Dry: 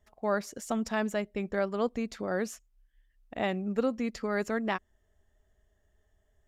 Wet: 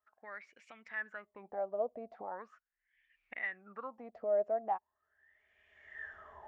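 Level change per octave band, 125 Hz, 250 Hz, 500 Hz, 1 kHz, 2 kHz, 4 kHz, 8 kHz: under -20 dB, -23.5 dB, -5.5 dB, -4.5 dB, -5.0 dB, under -20 dB, under -30 dB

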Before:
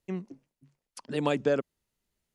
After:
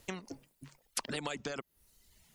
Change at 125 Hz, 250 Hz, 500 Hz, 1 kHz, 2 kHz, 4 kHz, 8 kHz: -10.0 dB, -11.0 dB, -14.0 dB, -7.0 dB, -3.5 dB, +1.0 dB, +9.5 dB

